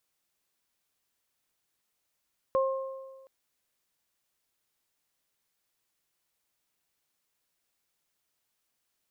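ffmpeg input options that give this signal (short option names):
-f lavfi -i "aevalsrc='0.0794*pow(10,-3*t/1.44)*sin(2*PI*533*t)+0.0422*pow(10,-3*t/1.14)*sin(2*PI*1066*t)':d=0.72:s=44100"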